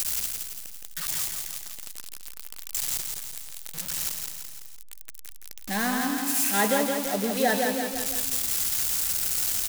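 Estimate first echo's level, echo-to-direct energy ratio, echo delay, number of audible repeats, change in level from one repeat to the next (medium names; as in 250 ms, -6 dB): -4.5 dB, -3.0 dB, 168 ms, 4, -5.0 dB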